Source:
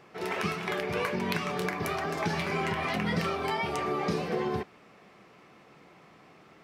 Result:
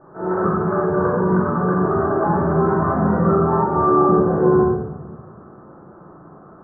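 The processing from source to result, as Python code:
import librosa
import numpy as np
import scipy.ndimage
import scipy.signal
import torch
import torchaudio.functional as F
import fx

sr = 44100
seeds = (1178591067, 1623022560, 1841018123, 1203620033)

y = scipy.signal.sosfilt(scipy.signal.butter(12, 1500.0, 'lowpass', fs=sr, output='sos'), x)
y = fx.room_shoebox(y, sr, seeds[0], volume_m3=570.0, walls='mixed', distance_m=2.6)
y = F.gain(torch.from_numpy(y), 5.5).numpy()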